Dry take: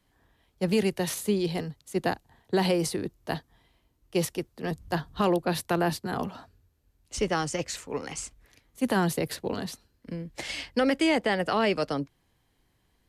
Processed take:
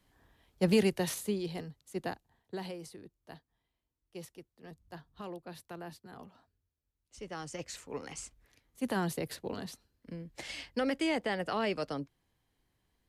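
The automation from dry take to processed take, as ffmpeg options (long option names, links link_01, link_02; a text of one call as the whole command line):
ffmpeg -i in.wav -af "volume=11dB,afade=type=out:start_time=0.67:duration=0.74:silence=0.375837,afade=type=out:start_time=1.96:duration=0.83:silence=0.316228,afade=type=in:start_time=7.19:duration=0.66:silence=0.266073" out.wav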